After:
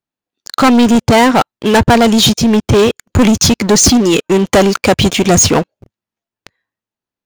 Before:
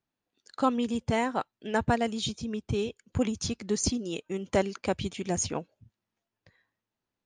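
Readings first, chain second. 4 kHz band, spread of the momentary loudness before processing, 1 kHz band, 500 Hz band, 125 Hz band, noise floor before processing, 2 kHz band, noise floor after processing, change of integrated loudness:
+22.5 dB, 7 LU, +18.5 dB, +19.0 dB, +19.5 dB, below −85 dBFS, +19.5 dB, below −85 dBFS, +20.0 dB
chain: low-shelf EQ 120 Hz −3 dB
leveller curve on the samples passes 5
level +8.5 dB

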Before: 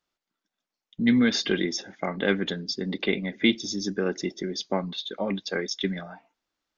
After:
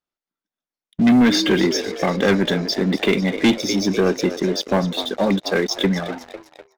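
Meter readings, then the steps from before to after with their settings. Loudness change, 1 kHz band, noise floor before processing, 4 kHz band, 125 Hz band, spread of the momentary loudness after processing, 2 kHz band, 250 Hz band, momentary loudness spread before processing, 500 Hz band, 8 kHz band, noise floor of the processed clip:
+8.0 dB, +10.5 dB, below −85 dBFS, +6.5 dB, +10.0 dB, 7 LU, +6.0 dB, +8.5 dB, 10 LU, +9.0 dB, can't be measured, below −85 dBFS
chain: high-shelf EQ 2,100 Hz −5 dB
echo with shifted repeats 249 ms, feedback 60%, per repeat +71 Hz, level −14.5 dB
leveller curve on the samples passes 3

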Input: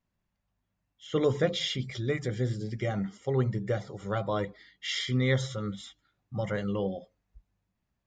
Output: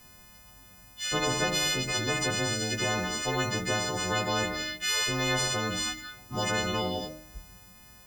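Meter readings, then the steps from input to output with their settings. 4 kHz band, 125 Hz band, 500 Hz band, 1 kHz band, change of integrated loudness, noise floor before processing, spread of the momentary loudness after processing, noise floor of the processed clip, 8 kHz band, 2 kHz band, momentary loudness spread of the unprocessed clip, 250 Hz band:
+7.5 dB, −4.0 dB, −1.5 dB, +8.0 dB, +3.0 dB, −82 dBFS, 8 LU, −53 dBFS, +16.5 dB, +8.5 dB, 11 LU, −1.0 dB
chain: every partial snapped to a pitch grid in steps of 3 semitones
hum removal 77.34 Hz, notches 32
every bin compressed towards the loudest bin 4 to 1
level −2 dB

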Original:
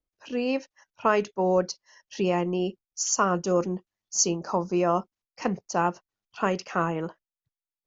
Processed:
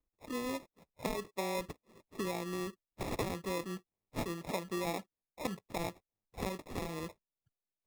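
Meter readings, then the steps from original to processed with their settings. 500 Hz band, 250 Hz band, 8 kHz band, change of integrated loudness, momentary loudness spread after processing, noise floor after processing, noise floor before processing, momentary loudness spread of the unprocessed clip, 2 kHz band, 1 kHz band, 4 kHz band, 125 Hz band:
−13.0 dB, −11.5 dB, can't be measured, −13.0 dB, 9 LU, below −85 dBFS, below −85 dBFS, 9 LU, −10.5 dB, −14.0 dB, −9.0 dB, −10.0 dB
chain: low-pass that shuts in the quiet parts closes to 940 Hz, open at −23.5 dBFS
dynamic equaliser 1,600 Hz, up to +5 dB, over −42 dBFS, Q 1.8
downward compressor 2.5 to 1, threshold −44 dBFS, peak gain reduction 19 dB
decimation without filtering 29×
level +2 dB

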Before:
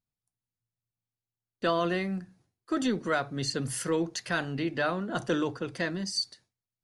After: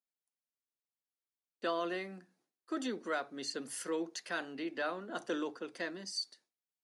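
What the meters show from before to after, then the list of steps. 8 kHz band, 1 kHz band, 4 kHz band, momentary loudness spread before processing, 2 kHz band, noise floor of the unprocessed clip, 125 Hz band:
−7.5 dB, −7.5 dB, −7.5 dB, 5 LU, −7.5 dB, below −85 dBFS, −21.5 dB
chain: high-pass filter 250 Hz 24 dB per octave
level −7.5 dB

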